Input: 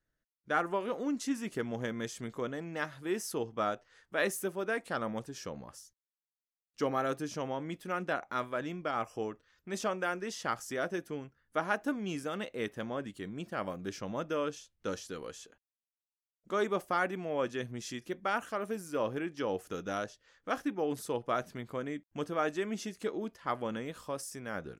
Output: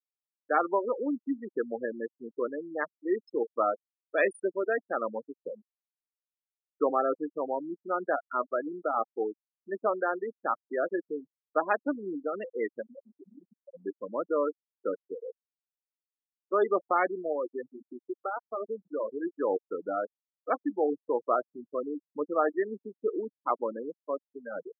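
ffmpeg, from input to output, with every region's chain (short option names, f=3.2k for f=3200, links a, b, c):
-filter_complex "[0:a]asettb=1/sr,asplit=3[a][b][c];[a]atrim=end=12.824[d];[b]atrim=start=12.82:end=13.75,asetpts=PTS-STARTPTS,afade=t=in:d=0.004:c=qsin,afade=t=out:st=0.926:d=0.004:c=qsin,acompressor=threshold=-44dB:ratio=4:attack=3.2:release=140:knee=1:detection=peak,asplit=2[e][f];[f]adelay=33,volume=-4.5dB[g];[e][g]amix=inputs=2:normalize=0,atrim=end_sample=41013[h];[c]atrim=start=13.746[i];[d][h]acrossfade=d=0.004:c1=hsin:c2=qsin[j];[j][i]acrossfade=d=0.004:c1=qsin:c2=hsin,asettb=1/sr,asplit=3[k][l][m];[k]atrim=end=17.324[n];[l]atrim=start=17.32:end=19.23,asetpts=PTS-STARTPTS,afade=t=in:d=0.004:c=qsin,afade=t=out:st=1.906:d=0.004:c=qsin,acompressor=threshold=-36dB:ratio=2:attack=3.2:release=140:knee=1:detection=peak,bandreject=f=60:t=h:w=6,bandreject=f=120:t=h:w=6,bandreject=f=180:t=h:w=6,bandreject=f=240:t=h:w=6[o];[m]atrim=start=19.226[p];[n][o]acrossfade=d=0.004:c1=hsin:c2=qsin[q];[q][p]acrossfade=d=0.004:c1=qsin:c2=hsin,afftfilt=real='re*gte(hypot(re,im),0.0447)':imag='im*gte(hypot(re,im),0.0447)':win_size=1024:overlap=0.75,highpass=f=300:w=0.5412,highpass=f=300:w=1.3066,equalizer=f=1.5k:w=7.5:g=-7.5,volume=6.5dB"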